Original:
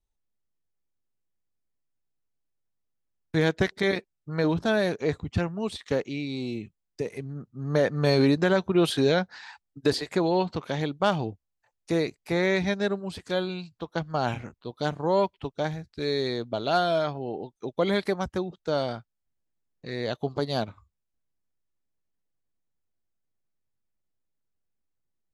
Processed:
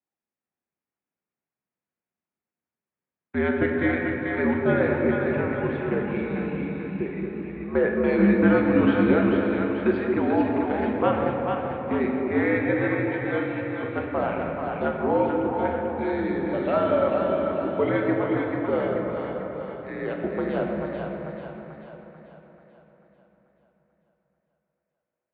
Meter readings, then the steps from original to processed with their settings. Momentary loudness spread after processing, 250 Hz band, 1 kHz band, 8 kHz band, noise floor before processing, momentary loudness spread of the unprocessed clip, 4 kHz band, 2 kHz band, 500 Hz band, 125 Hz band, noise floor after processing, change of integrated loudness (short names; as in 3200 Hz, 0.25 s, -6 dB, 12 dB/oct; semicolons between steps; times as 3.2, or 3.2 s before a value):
12 LU, +5.5 dB, +2.5 dB, under -30 dB, -81 dBFS, 13 LU, -12.5 dB, +3.5 dB, +3.0 dB, 0.0 dB, under -85 dBFS, +3.0 dB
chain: split-band echo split 650 Hz, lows 0.22 s, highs 0.439 s, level -4 dB; shoebox room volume 200 m³, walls hard, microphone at 0.42 m; mistuned SSB -73 Hz 220–2600 Hz